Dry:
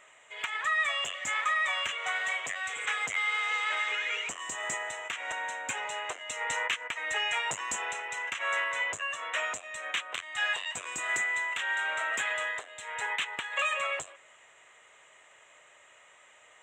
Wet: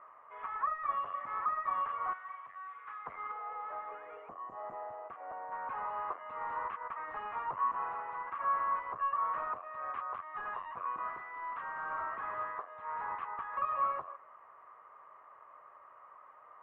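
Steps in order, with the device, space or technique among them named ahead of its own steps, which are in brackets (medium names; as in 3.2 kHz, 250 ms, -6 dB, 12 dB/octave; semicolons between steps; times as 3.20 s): 2.13–3.06 s: amplifier tone stack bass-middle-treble 5-5-5; 3.32–5.52 s: time-frequency box 840–4900 Hz -12 dB; overdriven synthesiser ladder filter (saturation -35 dBFS, distortion -8 dB; four-pole ladder low-pass 1.2 kHz, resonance 80%); trim +9 dB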